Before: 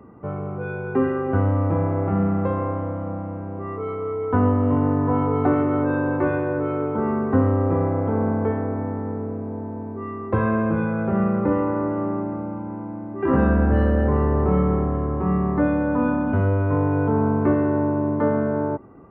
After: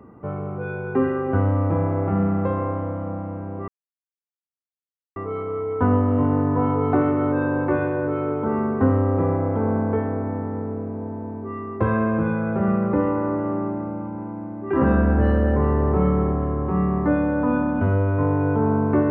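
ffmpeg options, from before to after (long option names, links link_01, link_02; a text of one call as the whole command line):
ffmpeg -i in.wav -filter_complex "[0:a]asplit=2[link_01][link_02];[link_01]atrim=end=3.68,asetpts=PTS-STARTPTS,afade=type=out:start_time=3.676:duration=0.004:curve=hsin,apad=pad_dur=1.48[link_03];[link_02]atrim=start=3.68,asetpts=PTS-STARTPTS,afade=type=in:duration=0.004:curve=hsin[link_04];[link_03][link_04]concat=n=2:v=0:a=1" out.wav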